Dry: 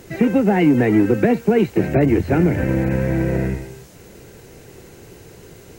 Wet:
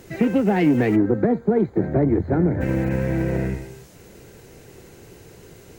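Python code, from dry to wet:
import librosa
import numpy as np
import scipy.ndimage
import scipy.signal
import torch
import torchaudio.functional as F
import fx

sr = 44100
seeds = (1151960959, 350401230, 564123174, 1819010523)

y = fx.self_delay(x, sr, depth_ms=0.076)
y = fx.moving_average(y, sr, points=16, at=(0.95, 2.6), fade=0.02)
y = F.gain(torch.from_numpy(y), -3.0).numpy()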